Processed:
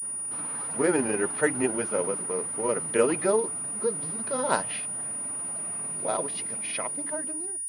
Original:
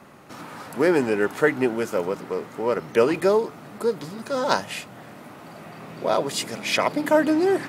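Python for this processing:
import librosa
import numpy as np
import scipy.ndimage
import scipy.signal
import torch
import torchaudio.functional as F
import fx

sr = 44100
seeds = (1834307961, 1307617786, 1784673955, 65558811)

y = fx.fade_out_tail(x, sr, length_s=2.21)
y = fx.granulator(y, sr, seeds[0], grain_ms=102.0, per_s=20.0, spray_ms=16.0, spread_st=0)
y = fx.pwm(y, sr, carrier_hz=9600.0)
y = y * 10.0 ** (-3.0 / 20.0)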